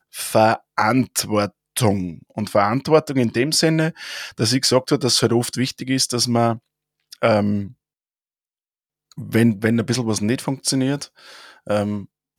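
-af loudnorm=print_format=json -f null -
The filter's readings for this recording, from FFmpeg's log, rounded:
"input_i" : "-20.1",
"input_tp" : "-2.2",
"input_lra" : "3.6",
"input_thresh" : "-30.6",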